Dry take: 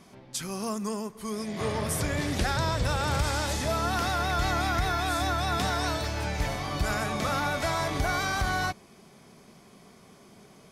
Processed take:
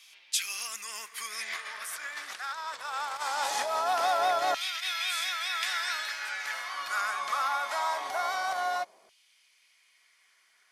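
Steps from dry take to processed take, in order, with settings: Doppler pass-by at 2.19, 10 m/s, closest 7.9 m; HPF 47 Hz 6 dB/oct; negative-ratio compressor -39 dBFS, ratio -1; LFO high-pass saw down 0.22 Hz 590–2900 Hz; gain +8 dB

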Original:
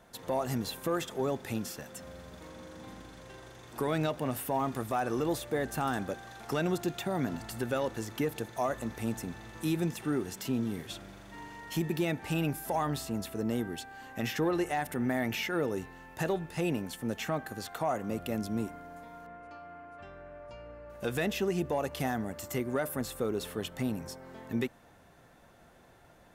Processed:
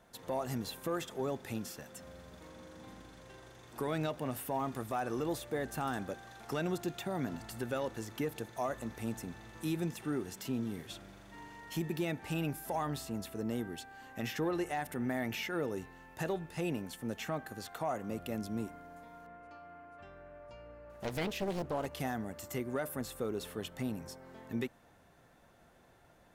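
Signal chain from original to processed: 20.84–21.86 Doppler distortion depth 0.98 ms; gain -4.5 dB

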